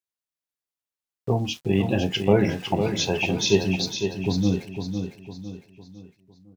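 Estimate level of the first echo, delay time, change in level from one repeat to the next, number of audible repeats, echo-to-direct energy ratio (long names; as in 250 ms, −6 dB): −7.0 dB, 505 ms, −7.5 dB, 4, −6.0 dB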